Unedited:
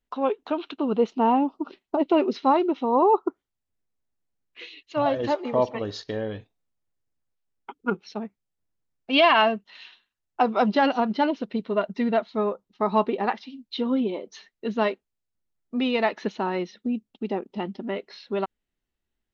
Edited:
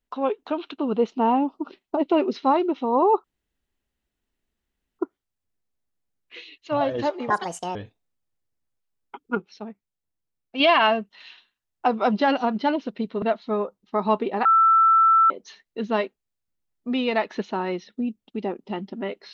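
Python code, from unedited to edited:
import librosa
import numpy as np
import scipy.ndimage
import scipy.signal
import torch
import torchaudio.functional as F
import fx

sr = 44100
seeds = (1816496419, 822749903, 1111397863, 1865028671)

y = fx.edit(x, sr, fx.insert_room_tone(at_s=3.24, length_s=1.75),
    fx.speed_span(start_s=5.55, length_s=0.75, speed=1.66),
    fx.clip_gain(start_s=7.92, length_s=1.23, db=-4.0),
    fx.cut(start_s=11.77, length_s=0.32),
    fx.bleep(start_s=13.32, length_s=0.85, hz=1330.0, db=-13.0), tone=tone)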